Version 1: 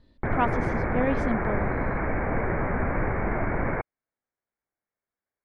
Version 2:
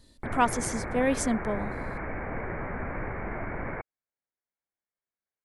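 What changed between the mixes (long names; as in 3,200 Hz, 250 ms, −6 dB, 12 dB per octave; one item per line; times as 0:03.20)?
background −8.5 dB
master: remove high-frequency loss of the air 330 metres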